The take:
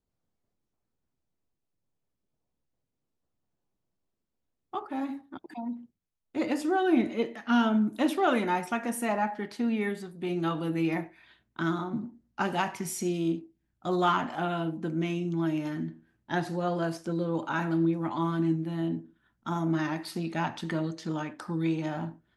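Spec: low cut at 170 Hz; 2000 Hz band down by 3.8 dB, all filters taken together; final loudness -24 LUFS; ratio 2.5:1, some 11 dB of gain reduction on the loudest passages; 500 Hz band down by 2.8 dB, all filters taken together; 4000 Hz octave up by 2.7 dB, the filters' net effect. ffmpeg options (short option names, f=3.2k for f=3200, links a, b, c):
-af "highpass=170,equalizer=f=500:t=o:g=-4,equalizer=f=2k:t=o:g=-6.5,equalizer=f=4k:t=o:g=6.5,acompressor=threshold=-38dB:ratio=2.5,volume=15.5dB"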